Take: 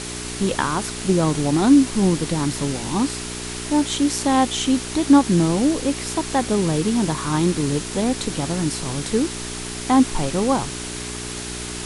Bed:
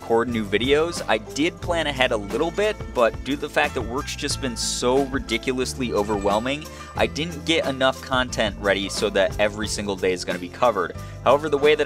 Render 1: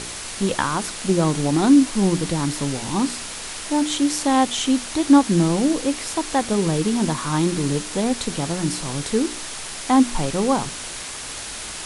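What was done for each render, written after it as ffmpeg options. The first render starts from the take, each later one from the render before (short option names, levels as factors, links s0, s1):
-af "bandreject=f=60:t=h:w=4,bandreject=f=120:t=h:w=4,bandreject=f=180:t=h:w=4,bandreject=f=240:t=h:w=4,bandreject=f=300:t=h:w=4,bandreject=f=360:t=h:w=4,bandreject=f=420:t=h:w=4"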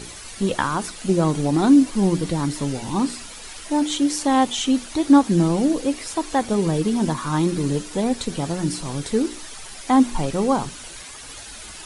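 -af "afftdn=nr=10:nf=-33"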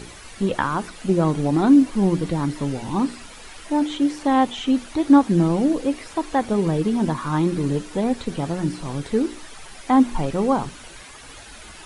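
-filter_complex "[0:a]acrossover=split=3100[s0][s1];[s1]acompressor=threshold=0.00631:ratio=4:attack=1:release=60[s2];[s0][s2]amix=inputs=2:normalize=0"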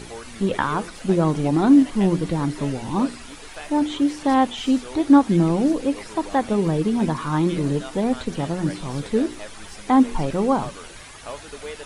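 -filter_complex "[1:a]volume=0.119[s0];[0:a][s0]amix=inputs=2:normalize=0"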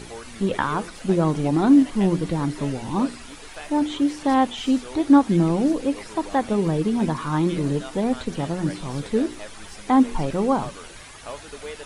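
-af "volume=0.891"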